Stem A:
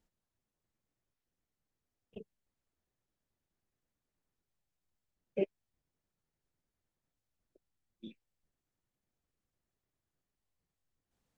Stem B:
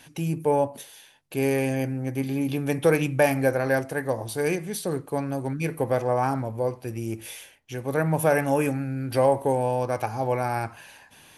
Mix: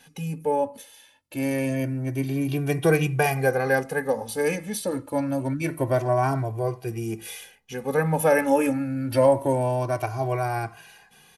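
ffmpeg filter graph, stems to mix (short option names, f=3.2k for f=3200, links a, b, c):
-filter_complex "[0:a]volume=-17dB[a];[1:a]volume=0dB[b];[a][b]amix=inputs=2:normalize=0,dynaudnorm=f=740:g=5:m=5dB,asplit=2[c][d];[d]adelay=2,afreqshift=0.26[e];[c][e]amix=inputs=2:normalize=1"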